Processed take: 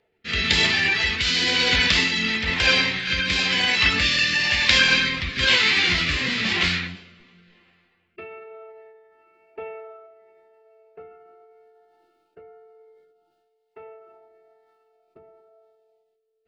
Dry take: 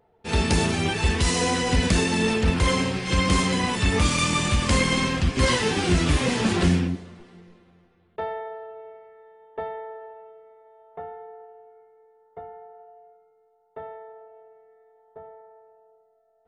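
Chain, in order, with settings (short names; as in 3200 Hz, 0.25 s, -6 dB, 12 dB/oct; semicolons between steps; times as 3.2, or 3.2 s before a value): low shelf 490 Hz -11 dB; rotary speaker horn 1 Hz; band shelf 3900 Hz +12 dB; formant shift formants -5 st; gain +1.5 dB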